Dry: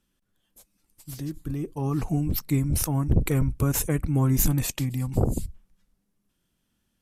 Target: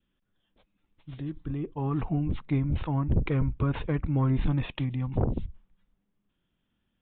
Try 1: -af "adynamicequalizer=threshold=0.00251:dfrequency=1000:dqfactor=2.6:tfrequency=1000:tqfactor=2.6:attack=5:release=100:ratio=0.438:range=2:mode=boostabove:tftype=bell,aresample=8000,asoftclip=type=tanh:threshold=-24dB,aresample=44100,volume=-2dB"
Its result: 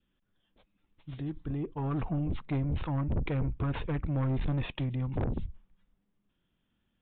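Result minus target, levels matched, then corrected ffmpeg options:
soft clipping: distortion +12 dB
-af "adynamicequalizer=threshold=0.00251:dfrequency=1000:dqfactor=2.6:tfrequency=1000:tqfactor=2.6:attack=5:release=100:ratio=0.438:range=2:mode=boostabove:tftype=bell,aresample=8000,asoftclip=type=tanh:threshold=-13dB,aresample=44100,volume=-2dB"

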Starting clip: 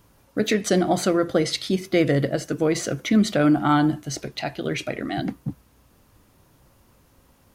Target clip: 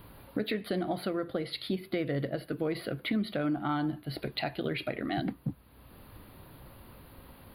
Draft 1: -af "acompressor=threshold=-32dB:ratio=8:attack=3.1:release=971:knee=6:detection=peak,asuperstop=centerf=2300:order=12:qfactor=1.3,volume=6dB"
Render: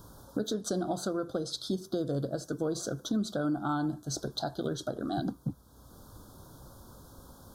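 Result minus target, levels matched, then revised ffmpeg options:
8,000 Hz band +16.5 dB
-af "acompressor=threshold=-32dB:ratio=8:attack=3.1:release=971:knee=6:detection=peak,asuperstop=centerf=6900:order=12:qfactor=1.3,volume=6dB"

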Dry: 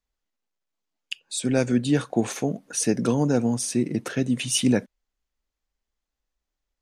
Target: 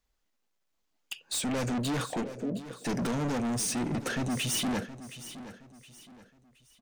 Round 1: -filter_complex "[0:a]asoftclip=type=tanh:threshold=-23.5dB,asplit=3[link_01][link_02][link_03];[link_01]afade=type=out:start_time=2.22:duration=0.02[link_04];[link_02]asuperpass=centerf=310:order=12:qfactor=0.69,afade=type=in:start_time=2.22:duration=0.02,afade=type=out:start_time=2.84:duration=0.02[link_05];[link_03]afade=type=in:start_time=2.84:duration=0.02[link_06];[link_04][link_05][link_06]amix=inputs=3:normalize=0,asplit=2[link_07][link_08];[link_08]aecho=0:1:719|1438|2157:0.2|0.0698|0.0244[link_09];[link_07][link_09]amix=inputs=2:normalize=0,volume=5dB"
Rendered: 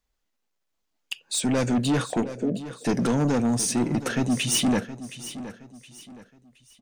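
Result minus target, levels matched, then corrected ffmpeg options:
soft clipping: distortion −5 dB
-filter_complex "[0:a]asoftclip=type=tanh:threshold=-33.5dB,asplit=3[link_01][link_02][link_03];[link_01]afade=type=out:start_time=2.22:duration=0.02[link_04];[link_02]asuperpass=centerf=310:order=12:qfactor=0.69,afade=type=in:start_time=2.22:duration=0.02,afade=type=out:start_time=2.84:duration=0.02[link_05];[link_03]afade=type=in:start_time=2.84:duration=0.02[link_06];[link_04][link_05][link_06]amix=inputs=3:normalize=0,asplit=2[link_07][link_08];[link_08]aecho=0:1:719|1438|2157:0.2|0.0698|0.0244[link_09];[link_07][link_09]amix=inputs=2:normalize=0,volume=5dB"

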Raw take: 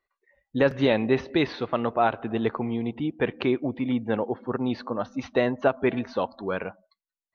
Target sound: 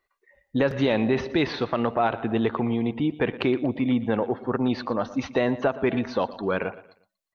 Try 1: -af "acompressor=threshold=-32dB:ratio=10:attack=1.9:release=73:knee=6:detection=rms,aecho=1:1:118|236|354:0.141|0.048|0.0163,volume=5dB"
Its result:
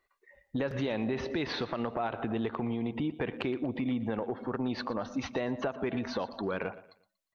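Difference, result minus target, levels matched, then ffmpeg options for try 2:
downward compressor: peak gain reduction +10.5 dB
-af "acompressor=threshold=-20.5dB:ratio=10:attack=1.9:release=73:knee=6:detection=rms,aecho=1:1:118|236|354:0.141|0.048|0.0163,volume=5dB"

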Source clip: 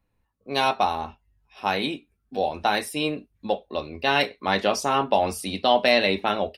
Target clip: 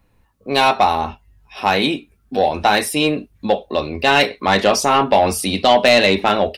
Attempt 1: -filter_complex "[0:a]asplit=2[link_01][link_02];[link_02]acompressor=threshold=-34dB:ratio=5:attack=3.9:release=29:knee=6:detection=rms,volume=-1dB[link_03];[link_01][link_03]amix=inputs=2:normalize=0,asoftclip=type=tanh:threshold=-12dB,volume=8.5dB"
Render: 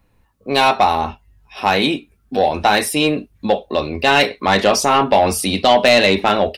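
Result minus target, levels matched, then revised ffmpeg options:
downward compressor: peak gain reduction −6 dB
-filter_complex "[0:a]asplit=2[link_01][link_02];[link_02]acompressor=threshold=-41.5dB:ratio=5:attack=3.9:release=29:knee=6:detection=rms,volume=-1dB[link_03];[link_01][link_03]amix=inputs=2:normalize=0,asoftclip=type=tanh:threshold=-12dB,volume=8.5dB"

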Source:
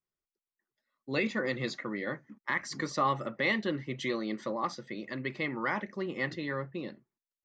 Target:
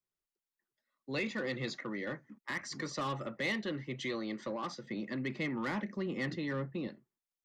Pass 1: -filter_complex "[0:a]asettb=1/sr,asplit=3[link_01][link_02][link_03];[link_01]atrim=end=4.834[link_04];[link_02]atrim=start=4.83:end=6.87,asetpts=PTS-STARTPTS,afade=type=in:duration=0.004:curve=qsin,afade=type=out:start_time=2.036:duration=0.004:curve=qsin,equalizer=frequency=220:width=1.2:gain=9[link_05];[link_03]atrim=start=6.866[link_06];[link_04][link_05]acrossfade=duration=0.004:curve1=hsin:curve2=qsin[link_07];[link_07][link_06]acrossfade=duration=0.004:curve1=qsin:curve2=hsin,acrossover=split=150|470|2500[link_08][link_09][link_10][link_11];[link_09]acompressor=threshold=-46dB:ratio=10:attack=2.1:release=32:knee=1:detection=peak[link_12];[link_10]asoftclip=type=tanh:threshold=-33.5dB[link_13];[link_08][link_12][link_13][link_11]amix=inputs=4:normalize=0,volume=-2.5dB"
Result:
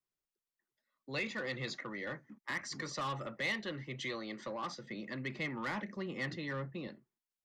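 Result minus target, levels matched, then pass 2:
downward compressor: peak gain reduction +10 dB
-filter_complex "[0:a]asettb=1/sr,asplit=3[link_01][link_02][link_03];[link_01]atrim=end=4.834[link_04];[link_02]atrim=start=4.83:end=6.87,asetpts=PTS-STARTPTS,afade=type=in:duration=0.004:curve=qsin,afade=type=out:start_time=2.036:duration=0.004:curve=qsin,equalizer=frequency=220:width=1.2:gain=9[link_05];[link_03]atrim=start=6.866[link_06];[link_04][link_05]acrossfade=duration=0.004:curve1=hsin:curve2=qsin[link_07];[link_07][link_06]acrossfade=duration=0.004:curve1=qsin:curve2=hsin,acrossover=split=150|470|2500[link_08][link_09][link_10][link_11];[link_09]acompressor=threshold=-35dB:ratio=10:attack=2.1:release=32:knee=1:detection=peak[link_12];[link_10]asoftclip=type=tanh:threshold=-33.5dB[link_13];[link_08][link_12][link_13][link_11]amix=inputs=4:normalize=0,volume=-2.5dB"

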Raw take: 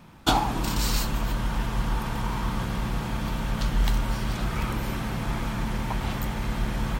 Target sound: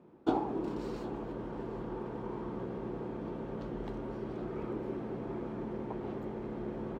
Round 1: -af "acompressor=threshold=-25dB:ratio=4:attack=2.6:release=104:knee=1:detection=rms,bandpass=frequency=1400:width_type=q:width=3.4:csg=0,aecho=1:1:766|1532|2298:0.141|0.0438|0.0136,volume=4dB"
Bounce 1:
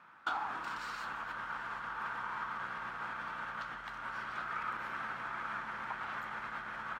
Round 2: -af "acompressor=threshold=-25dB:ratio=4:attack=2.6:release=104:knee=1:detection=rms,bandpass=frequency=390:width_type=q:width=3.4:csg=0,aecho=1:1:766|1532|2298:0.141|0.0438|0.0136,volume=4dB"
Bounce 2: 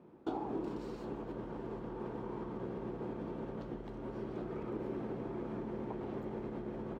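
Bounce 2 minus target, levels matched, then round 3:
downward compressor: peak gain reduction +11 dB
-af "bandpass=frequency=390:width_type=q:width=3.4:csg=0,aecho=1:1:766|1532|2298:0.141|0.0438|0.0136,volume=4dB"

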